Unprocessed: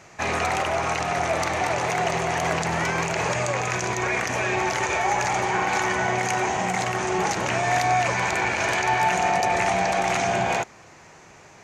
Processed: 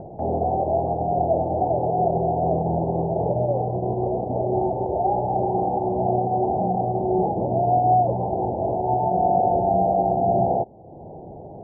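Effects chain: steep low-pass 800 Hz 72 dB/octave; upward compressor, threshold -34 dBFS; trim +5 dB

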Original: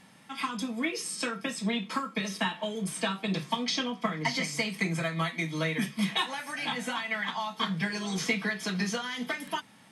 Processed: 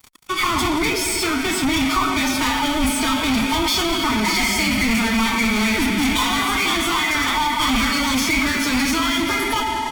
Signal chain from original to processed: rattle on loud lows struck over -33 dBFS, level -25 dBFS; reverberation RT60 2.7 s, pre-delay 10 ms, DRR 2.5 dB; fuzz box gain 38 dB, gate -47 dBFS; upward compressor, threshold -29 dBFS; formant-preserving pitch shift +5.5 st; bass shelf 63 Hz +10 dB; comb 0.9 ms, depth 42%; trim -5 dB

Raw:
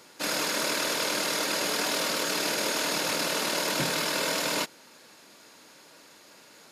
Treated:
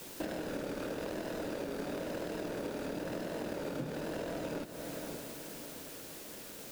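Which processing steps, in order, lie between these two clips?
median filter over 41 samples; vibrato 1 Hz 88 cents; echo that smears into a reverb 532 ms, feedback 44%, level -15.5 dB; in parallel at -6 dB: word length cut 8-bit, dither triangular; on the sum: compression 12:1, threshold -40 dBFS, peak gain reduction 16 dB; trim +5 dB

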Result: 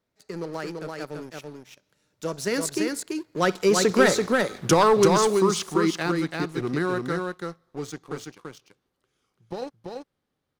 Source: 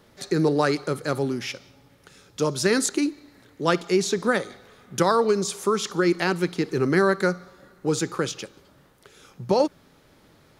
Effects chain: Doppler pass-by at 4.36 s, 24 m/s, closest 11 m; waveshaping leveller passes 2; delay 336 ms -3.5 dB

